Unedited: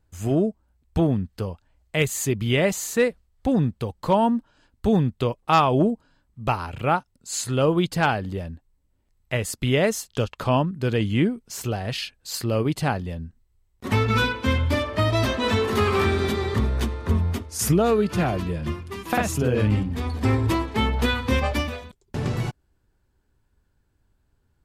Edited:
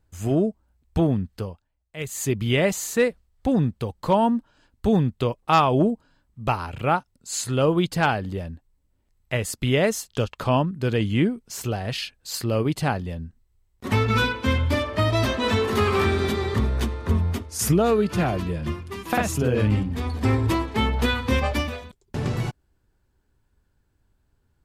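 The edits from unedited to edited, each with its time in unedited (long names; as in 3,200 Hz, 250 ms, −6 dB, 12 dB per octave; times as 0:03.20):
0:01.35–0:02.30: duck −14.5 dB, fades 0.34 s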